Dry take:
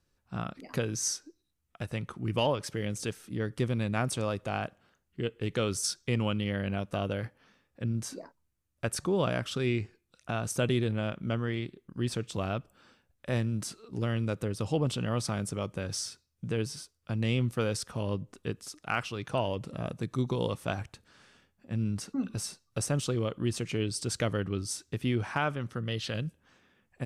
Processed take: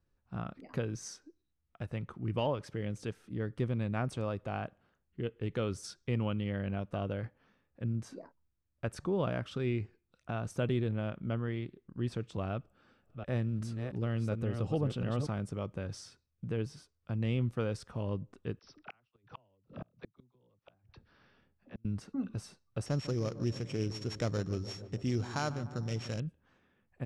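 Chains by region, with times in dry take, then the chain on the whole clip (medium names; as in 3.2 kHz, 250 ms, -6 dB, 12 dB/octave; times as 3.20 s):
12.52–15.27 s: chunks repeated in reverse 359 ms, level -5.5 dB + band-stop 980 Hz
18.59–21.85 s: brick-wall FIR low-pass 6 kHz + phase dispersion lows, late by 40 ms, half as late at 510 Hz + inverted gate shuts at -27 dBFS, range -36 dB
22.86–26.20 s: sorted samples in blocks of 8 samples + resonant low-pass 7.2 kHz, resonance Q 4.1 + filtered feedback delay 149 ms, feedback 78%, low-pass 1.4 kHz, level -14 dB
whole clip: low-pass 1.8 kHz 6 dB/octave; bass shelf 79 Hz +5 dB; trim -4 dB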